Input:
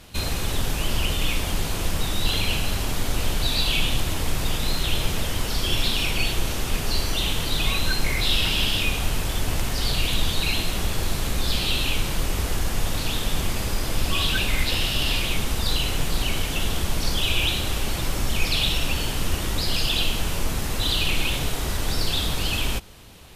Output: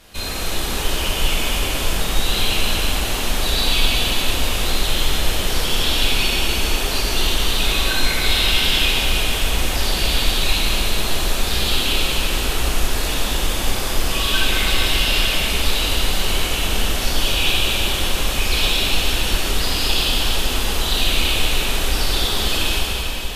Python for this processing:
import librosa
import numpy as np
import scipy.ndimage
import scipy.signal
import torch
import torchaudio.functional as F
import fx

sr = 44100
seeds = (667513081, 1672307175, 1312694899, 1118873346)

y = fx.peak_eq(x, sr, hz=120.0, db=-9.5, octaves=1.5)
y = fx.rev_plate(y, sr, seeds[0], rt60_s=4.7, hf_ratio=0.9, predelay_ms=0, drr_db=-6.5)
y = y * 10.0 ** (-1.0 / 20.0)